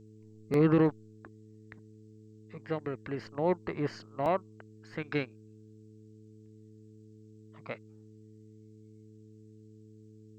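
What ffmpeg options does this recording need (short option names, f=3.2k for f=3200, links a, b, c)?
-af "bandreject=f=108.1:t=h:w=4,bandreject=f=216.2:t=h:w=4,bandreject=f=324.3:t=h:w=4,bandreject=f=432.4:t=h:w=4,agate=range=-21dB:threshold=-46dB"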